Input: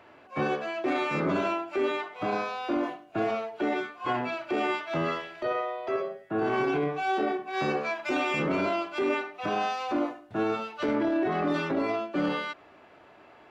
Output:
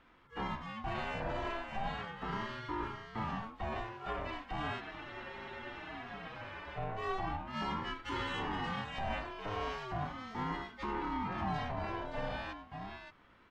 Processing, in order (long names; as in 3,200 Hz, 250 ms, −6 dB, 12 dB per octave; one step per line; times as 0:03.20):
single-tap delay 575 ms −6.5 dB
frozen spectrum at 0:04.82, 1.96 s
ring modulator whose carrier an LFO sweeps 480 Hz, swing 35%, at 0.37 Hz
level −7.5 dB